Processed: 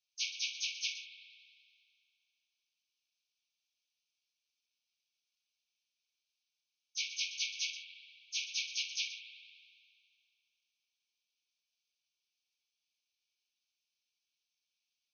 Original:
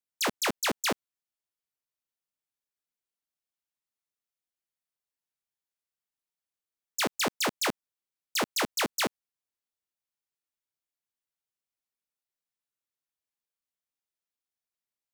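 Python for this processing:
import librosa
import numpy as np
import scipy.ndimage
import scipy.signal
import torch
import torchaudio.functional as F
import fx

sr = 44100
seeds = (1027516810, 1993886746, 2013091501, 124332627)

p1 = fx.phase_scramble(x, sr, seeds[0], window_ms=50)
p2 = 10.0 ** (-27.5 / 20.0) * np.tanh(p1 / 10.0 ** (-27.5 / 20.0))
p3 = p2 + fx.echo_single(p2, sr, ms=120, db=-23.5, dry=0)
p4 = p3 * np.sin(2.0 * np.pi * 580.0 * np.arange(len(p3)) / sr)
p5 = fx.over_compress(p4, sr, threshold_db=-49.0, ratio=-1.0)
p6 = p4 + F.gain(torch.from_numpy(p5), -1.5).numpy()
p7 = fx.brickwall_bandpass(p6, sr, low_hz=2200.0, high_hz=6500.0)
p8 = fx.rev_spring(p7, sr, rt60_s=2.3, pass_ms=(57,), chirp_ms=40, drr_db=7.5)
y = F.gain(torch.from_numpy(p8), 2.0).numpy()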